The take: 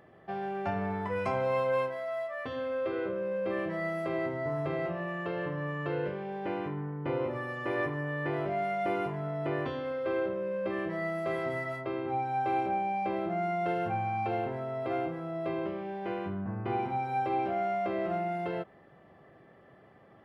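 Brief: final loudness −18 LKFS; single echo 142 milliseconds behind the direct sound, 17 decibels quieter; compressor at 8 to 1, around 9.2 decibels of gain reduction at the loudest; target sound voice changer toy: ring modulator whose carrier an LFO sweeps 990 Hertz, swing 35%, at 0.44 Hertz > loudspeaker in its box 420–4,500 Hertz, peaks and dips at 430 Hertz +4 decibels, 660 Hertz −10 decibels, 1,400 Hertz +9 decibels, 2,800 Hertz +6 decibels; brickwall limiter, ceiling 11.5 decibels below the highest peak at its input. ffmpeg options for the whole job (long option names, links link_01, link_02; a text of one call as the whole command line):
ffmpeg -i in.wav -af "acompressor=threshold=-36dB:ratio=8,alimiter=level_in=13.5dB:limit=-24dB:level=0:latency=1,volume=-13.5dB,aecho=1:1:142:0.141,aeval=exprs='val(0)*sin(2*PI*990*n/s+990*0.35/0.44*sin(2*PI*0.44*n/s))':channel_layout=same,highpass=420,equalizer=frequency=430:width_type=q:width=4:gain=4,equalizer=frequency=660:width_type=q:width=4:gain=-10,equalizer=frequency=1400:width_type=q:width=4:gain=9,equalizer=frequency=2800:width_type=q:width=4:gain=6,lowpass=frequency=4500:width=0.5412,lowpass=frequency=4500:width=1.3066,volume=26dB" out.wav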